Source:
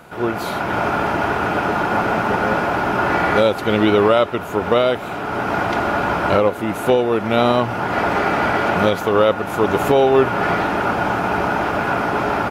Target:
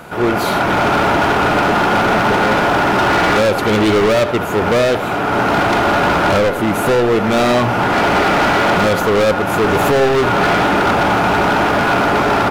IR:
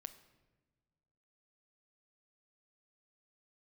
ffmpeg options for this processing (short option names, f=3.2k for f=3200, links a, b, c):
-filter_complex "[0:a]asoftclip=type=hard:threshold=-19dB,asplit=2[a][b];[1:a]atrim=start_sample=2205,lowpass=4.9k,adelay=74[c];[b][c]afir=irnorm=-1:irlink=0,volume=-7dB[d];[a][d]amix=inputs=2:normalize=0,volume=8dB"